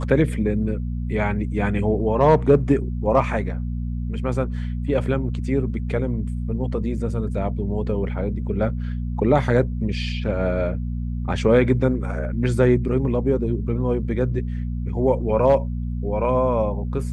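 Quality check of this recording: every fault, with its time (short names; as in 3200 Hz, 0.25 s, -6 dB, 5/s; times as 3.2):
hum 60 Hz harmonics 4 -26 dBFS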